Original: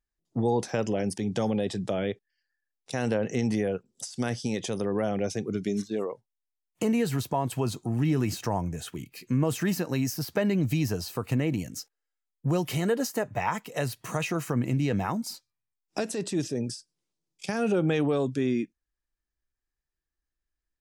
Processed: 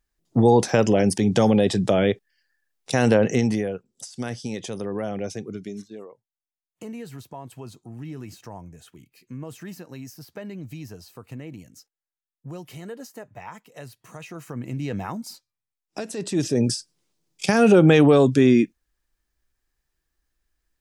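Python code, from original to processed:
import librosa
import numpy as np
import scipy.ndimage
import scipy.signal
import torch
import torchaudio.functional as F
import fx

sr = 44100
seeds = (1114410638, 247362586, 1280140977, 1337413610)

y = fx.gain(x, sr, db=fx.line((3.26, 9.5), (3.75, -1.0), (5.33, -1.0), (6.11, -11.0), (14.17, -11.0), (14.89, -2.0), (16.05, -2.0), (16.65, 11.0)))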